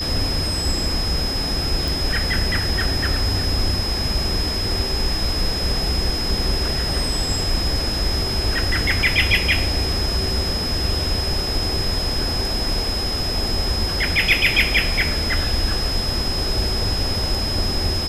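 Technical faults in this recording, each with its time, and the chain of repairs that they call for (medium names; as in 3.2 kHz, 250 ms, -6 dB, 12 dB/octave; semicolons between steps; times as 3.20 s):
whine 5.1 kHz -24 dBFS
1.88 s: pop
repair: de-click; band-stop 5.1 kHz, Q 30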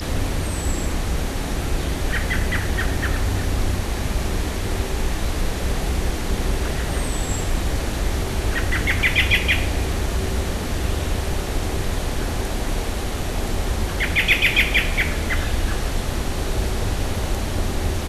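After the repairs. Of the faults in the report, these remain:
nothing left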